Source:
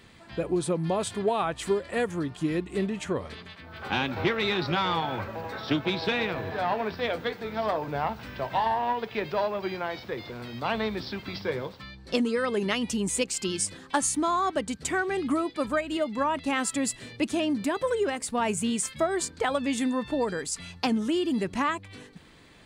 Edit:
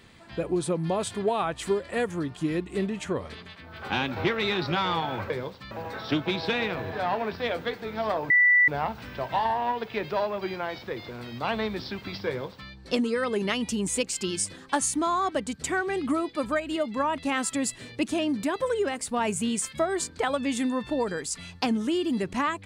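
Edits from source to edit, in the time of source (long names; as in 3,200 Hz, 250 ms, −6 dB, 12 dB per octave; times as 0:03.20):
0:07.89: insert tone 1,970 Hz −15.5 dBFS 0.38 s
0:11.49–0:11.90: duplicate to 0:05.30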